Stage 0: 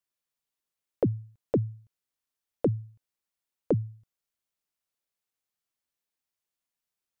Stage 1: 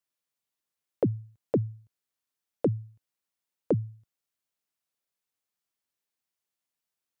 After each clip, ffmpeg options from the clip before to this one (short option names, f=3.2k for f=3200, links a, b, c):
-af "highpass=76"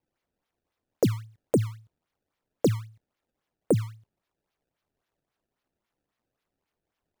-af "acrusher=samples=24:mix=1:aa=0.000001:lfo=1:lforange=38.4:lforate=3.7,volume=3dB"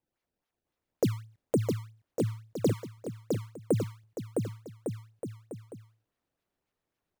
-af "aecho=1:1:660|1155|1526|1805|2014:0.631|0.398|0.251|0.158|0.1,volume=-4dB"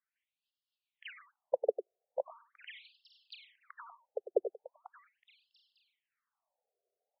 -filter_complex "[0:a]asplit=2[a][b];[b]adelay=99.13,volume=-11dB,highshelf=f=4k:g=-2.23[c];[a][c]amix=inputs=2:normalize=0,afftfilt=real='re*between(b*sr/1024,520*pow(3900/520,0.5+0.5*sin(2*PI*0.4*pts/sr))/1.41,520*pow(3900/520,0.5+0.5*sin(2*PI*0.4*pts/sr))*1.41)':imag='im*between(b*sr/1024,520*pow(3900/520,0.5+0.5*sin(2*PI*0.4*pts/sr))/1.41,520*pow(3900/520,0.5+0.5*sin(2*PI*0.4*pts/sr))*1.41)':win_size=1024:overlap=0.75,volume=3.5dB"